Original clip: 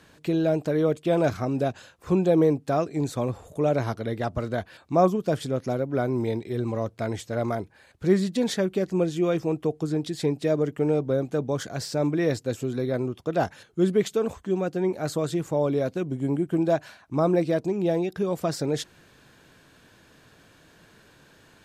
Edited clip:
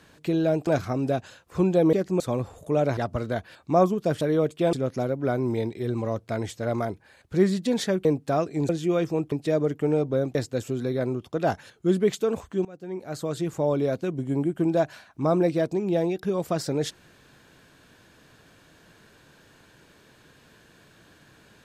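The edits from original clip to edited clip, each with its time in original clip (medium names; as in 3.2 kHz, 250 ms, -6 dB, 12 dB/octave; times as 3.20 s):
0.67–1.19 s: move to 5.43 s
2.45–3.09 s: swap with 8.75–9.02 s
3.86–4.19 s: delete
9.65–10.29 s: delete
11.32–12.28 s: delete
14.58–15.51 s: fade in, from -21.5 dB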